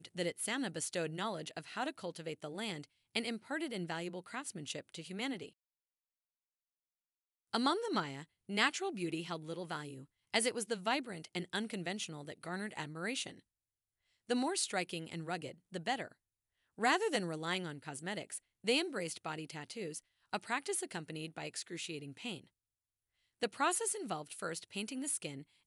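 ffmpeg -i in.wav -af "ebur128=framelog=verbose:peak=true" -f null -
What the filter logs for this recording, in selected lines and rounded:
Integrated loudness:
  I:         -38.5 LUFS
  Threshold: -48.7 LUFS
Loudness range:
  LRA:         5.4 LU
  Threshold: -59.3 LUFS
  LRA low:   -42.2 LUFS
  LRA high:  -36.9 LUFS
True peak:
  Peak:      -14.6 dBFS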